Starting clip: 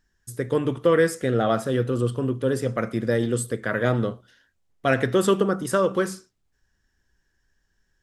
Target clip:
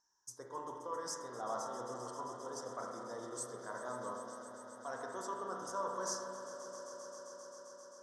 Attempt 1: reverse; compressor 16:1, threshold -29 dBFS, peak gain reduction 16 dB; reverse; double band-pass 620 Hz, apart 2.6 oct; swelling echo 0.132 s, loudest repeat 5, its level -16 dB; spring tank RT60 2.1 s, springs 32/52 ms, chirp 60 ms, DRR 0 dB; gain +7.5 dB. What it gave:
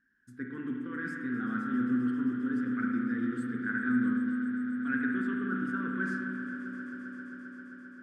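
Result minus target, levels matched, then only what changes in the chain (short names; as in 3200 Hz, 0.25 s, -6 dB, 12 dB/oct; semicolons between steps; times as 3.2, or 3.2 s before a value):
500 Hz band -14.5 dB
change: double band-pass 2400 Hz, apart 2.6 oct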